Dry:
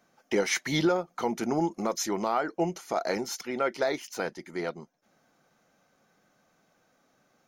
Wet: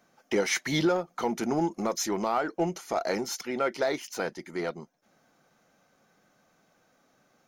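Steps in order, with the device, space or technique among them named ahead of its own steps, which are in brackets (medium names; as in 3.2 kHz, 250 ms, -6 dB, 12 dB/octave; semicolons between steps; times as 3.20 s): parallel distortion (in parallel at -9.5 dB: hard clipper -31.5 dBFS, distortion -5 dB); on the sum: trim -1 dB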